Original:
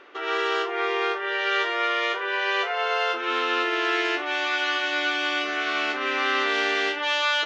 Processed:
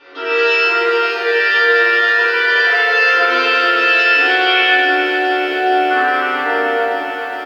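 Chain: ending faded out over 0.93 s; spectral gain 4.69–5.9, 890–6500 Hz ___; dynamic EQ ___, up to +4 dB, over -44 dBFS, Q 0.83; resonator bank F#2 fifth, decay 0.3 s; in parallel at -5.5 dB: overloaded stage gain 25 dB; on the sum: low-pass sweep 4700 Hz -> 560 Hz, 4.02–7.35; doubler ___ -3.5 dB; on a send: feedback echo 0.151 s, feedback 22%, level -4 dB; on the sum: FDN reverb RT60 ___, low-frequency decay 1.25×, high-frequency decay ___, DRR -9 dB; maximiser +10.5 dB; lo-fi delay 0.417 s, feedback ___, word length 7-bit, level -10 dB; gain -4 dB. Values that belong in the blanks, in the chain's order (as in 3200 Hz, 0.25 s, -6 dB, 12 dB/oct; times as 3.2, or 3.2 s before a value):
-26 dB, 260 Hz, 38 ms, 1.5 s, 0.35×, 80%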